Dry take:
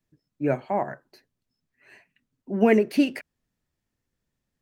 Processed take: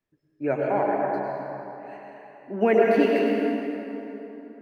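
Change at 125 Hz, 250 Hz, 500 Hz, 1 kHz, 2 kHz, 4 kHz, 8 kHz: −2.5 dB, −0.5 dB, +4.5 dB, +5.0 dB, +2.5 dB, −0.5 dB, can't be measured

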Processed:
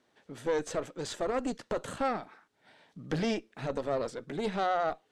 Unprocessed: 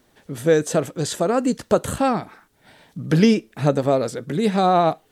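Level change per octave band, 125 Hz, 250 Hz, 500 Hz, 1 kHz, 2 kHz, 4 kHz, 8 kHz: −17.5, −16.0, −12.5, −11.5, −9.0, −11.0, −14.0 decibels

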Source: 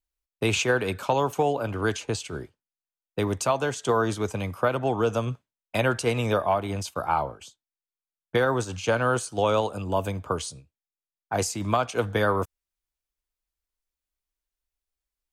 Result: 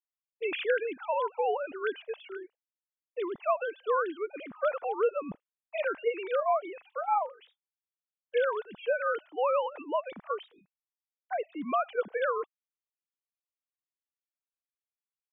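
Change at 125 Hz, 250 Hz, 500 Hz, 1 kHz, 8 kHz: below −30 dB, −13.0 dB, −4.0 dB, −4.0 dB, below −40 dB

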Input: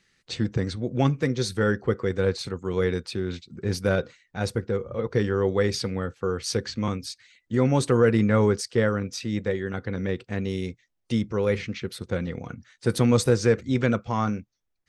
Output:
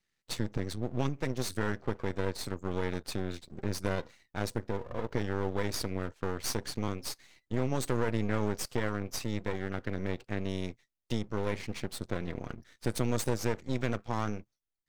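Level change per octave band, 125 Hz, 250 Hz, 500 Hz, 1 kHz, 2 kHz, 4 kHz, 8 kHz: −9.0, −9.0, −10.5, −6.0, −7.5, −6.5, −4.5 decibels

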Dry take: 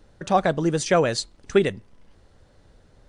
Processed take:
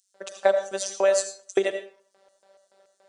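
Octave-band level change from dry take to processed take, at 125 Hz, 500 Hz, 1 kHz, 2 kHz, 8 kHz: below −25 dB, −0.5 dB, −8.0 dB, −3.5 dB, +2.0 dB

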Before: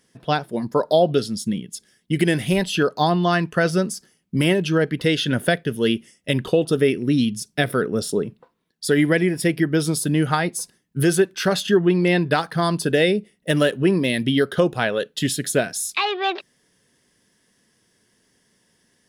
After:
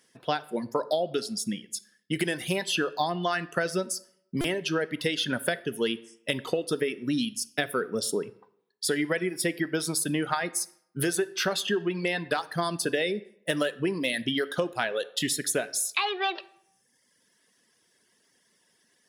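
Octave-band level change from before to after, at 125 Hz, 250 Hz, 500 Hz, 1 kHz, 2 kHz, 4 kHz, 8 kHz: −14.0, −10.5, −9.0, −7.0, −6.0, −4.5, −2.0 decibels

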